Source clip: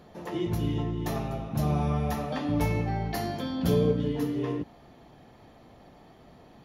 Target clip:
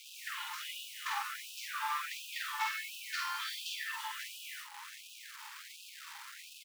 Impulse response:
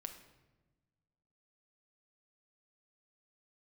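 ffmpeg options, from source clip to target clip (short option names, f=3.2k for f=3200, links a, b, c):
-filter_complex "[0:a]aemphasis=mode=reproduction:type=50fm,afftfilt=real='re*between(b*sr/4096,330,8500)':imag='im*between(b*sr/4096,330,8500)':win_size=4096:overlap=0.75,adynamicequalizer=threshold=0.002:dfrequency=1000:dqfactor=5.4:tfrequency=1000:tqfactor=5.4:attack=5:release=100:ratio=0.375:range=2.5:mode=cutabove:tftype=bell,acompressor=threshold=-51dB:ratio=1.5,aeval=exprs='0.0422*(cos(1*acos(clip(val(0)/0.0422,-1,1)))-cos(1*PI/2))+0.000299*(cos(2*acos(clip(val(0)/0.0422,-1,1)))-cos(2*PI/2))+0.000668*(cos(3*acos(clip(val(0)/0.0422,-1,1)))-cos(3*PI/2))+0.0075*(cos(6*acos(clip(val(0)/0.0422,-1,1)))-cos(6*PI/2))':c=same,acrusher=bits=8:mix=0:aa=0.000001,flanger=delay=2.3:depth=3.4:regen=-60:speed=0.75:shape=sinusoidal,asoftclip=type=tanh:threshold=-31dB,asplit=2[a][b];[b]adelay=48,volume=-3dB[c];[a][c]amix=inputs=2:normalize=0,aecho=1:1:329:0.237,afftfilt=real='re*gte(b*sr/1024,790*pow(2500/790,0.5+0.5*sin(2*PI*1.4*pts/sr)))':imag='im*gte(b*sr/1024,790*pow(2500/790,0.5+0.5*sin(2*PI*1.4*pts/sr)))':win_size=1024:overlap=0.75,volume=13.5dB"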